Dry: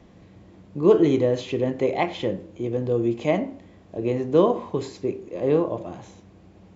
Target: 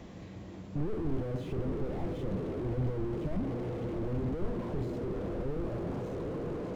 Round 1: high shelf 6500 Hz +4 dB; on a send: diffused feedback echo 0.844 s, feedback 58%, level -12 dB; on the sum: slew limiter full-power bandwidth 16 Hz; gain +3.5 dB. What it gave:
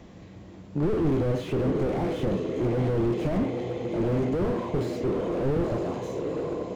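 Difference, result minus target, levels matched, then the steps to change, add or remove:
slew limiter: distortion -10 dB
change: slew limiter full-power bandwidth 4.5 Hz

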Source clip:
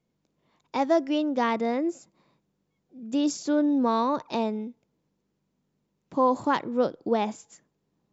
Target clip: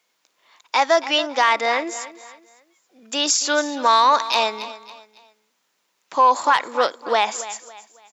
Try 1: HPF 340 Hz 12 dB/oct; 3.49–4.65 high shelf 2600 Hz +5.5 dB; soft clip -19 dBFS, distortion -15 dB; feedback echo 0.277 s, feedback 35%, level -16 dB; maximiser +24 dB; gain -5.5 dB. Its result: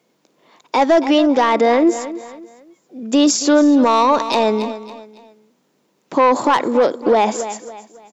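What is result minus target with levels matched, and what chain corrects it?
250 Hz band +13.5 dB
HPF 1200 Hz 12 dB/oct; 3.49–4.65 high shelf 2600 Hz +5.5 dB; soft clip -19 dBFS, distortion -23 dB; feedback echo 0.277 s, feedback 35%, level -16 dB; maximiser +24 dB; gain -5.5 dB

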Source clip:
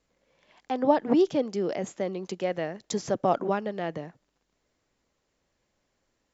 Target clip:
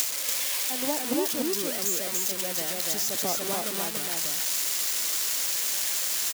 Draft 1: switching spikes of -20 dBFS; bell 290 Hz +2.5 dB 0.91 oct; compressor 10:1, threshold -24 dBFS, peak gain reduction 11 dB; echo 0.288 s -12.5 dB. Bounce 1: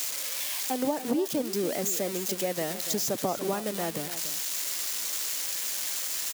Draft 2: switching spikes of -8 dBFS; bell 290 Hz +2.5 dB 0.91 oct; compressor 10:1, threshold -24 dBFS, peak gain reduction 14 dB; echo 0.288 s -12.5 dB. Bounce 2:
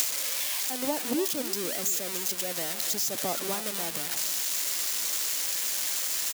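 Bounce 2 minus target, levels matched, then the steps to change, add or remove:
echo-to-direct -10.5 dB
change: echo 0.288 s -2 dB

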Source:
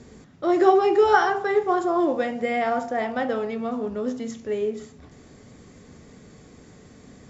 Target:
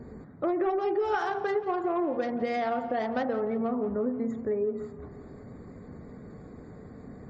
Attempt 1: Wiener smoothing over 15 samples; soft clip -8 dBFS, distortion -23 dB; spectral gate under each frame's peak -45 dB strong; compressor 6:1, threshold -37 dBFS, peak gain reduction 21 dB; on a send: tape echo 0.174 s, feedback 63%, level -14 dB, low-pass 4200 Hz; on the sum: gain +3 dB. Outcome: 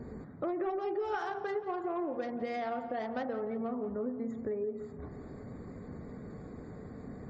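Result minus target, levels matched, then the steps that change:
compressor: peak gain reduction +6.5 dB
change: compressor 6:1, threshold -29 dBFS, peak gain reduction 14.5 dB

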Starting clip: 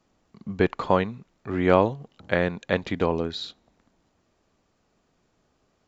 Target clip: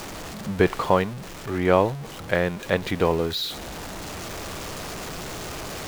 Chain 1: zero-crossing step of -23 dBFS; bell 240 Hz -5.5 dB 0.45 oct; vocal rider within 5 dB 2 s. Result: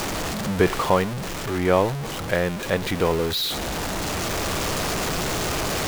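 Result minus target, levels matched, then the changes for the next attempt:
zero-crossing step: distortion +8 dB
change: zero-crossing step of -32.5 dBFS

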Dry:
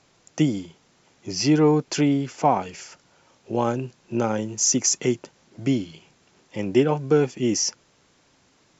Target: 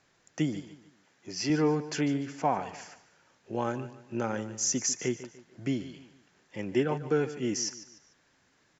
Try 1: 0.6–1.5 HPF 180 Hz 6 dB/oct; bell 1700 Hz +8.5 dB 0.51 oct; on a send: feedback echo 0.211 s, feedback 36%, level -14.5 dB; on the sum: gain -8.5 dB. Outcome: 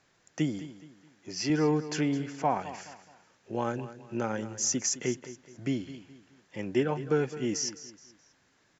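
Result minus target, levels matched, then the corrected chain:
echo 64 ms late
0.6–1.5 HPF 180 Hz 6 dB/oct; bell 1700 Hz +8.5 dB 0.51 oct; on a send: feedback echo 0.147 s, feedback 36%, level -14.5 dB; on the sum: gain -8.5 dB

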